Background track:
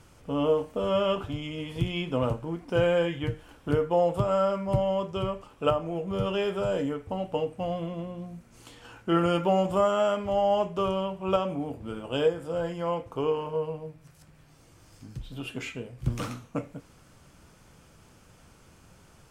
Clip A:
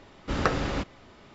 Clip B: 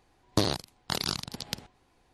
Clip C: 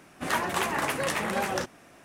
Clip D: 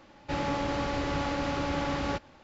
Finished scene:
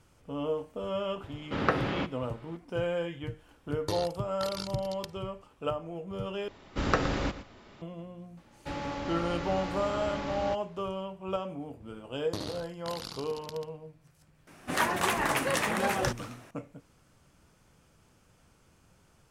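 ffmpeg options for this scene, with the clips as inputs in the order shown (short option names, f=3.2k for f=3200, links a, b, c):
-filter_complex "[1:a]asplit=2[a][b];[2:a]asplit=2[c][d];[0:a]volume=-7.5dB[e];[a]highpass=110,lowpass=3.4k[f];[c]aecho=1:1:2.2:0.65[g];[b]aecho=1:1:117:0.224[h];[d]aecho=1:1:72.89|139.9:0.501|0.398[i];[e]asplit=2[j][k];[j]atrim=end=6.484[l];[h]atrim=end=1.34,asetpts=PTS-STARTPTS,volume=-1.5dB[m];[k]atrim=start=7.816[n];[f]atrim=end=1.34,asetpts=PTS-STARTPTS,volume=-1dB,afade=t=in:d=0.004:c=hsin,afade=t=out:st=1.336:d=0.004:c=hsin,adelay=1230[o];[g]atrim=end=2.13,asetpts=PTS-STARTPTS,volume=-10dB,afade=t=in:d=0.004:c=hsin,afade=t=out:st=2.126:d=0.004:c=hsin,adelay=3510[p];[4:a]atrim=end=2.43,asetpts=PTS-STARTPTS,volume=-5.5dB,afade=t=in:d=0.004:c=hsin,afade=t=out:st=2.426:d=0.004:c=hsin,adelay=8370[q];[i]atrim=end=2.13,asetpts=PTS-STARTPTS,volume=-12dB,afade=t=in:d=0.004:c=hsin,afade=t=out:st=2.126:d=0.004:c=hsin,adelay=11960[r];[3:a]atrim=end=2.04,asetpts=PTS-STARTPTS,afade=t=in:d=0.004:c=hsin,afade=t=out:st=2.036:d=0.004:c=hsin,adelay=14470[s];[l][m]acrossfade=d=0.004:c1=hsin:c2=hsin[t];[t][n]acrossfade=d=0.004:c1=hsin:c2=hsin[u];[u][o][p][q][r][s]amix=inputs=6:normalize=0"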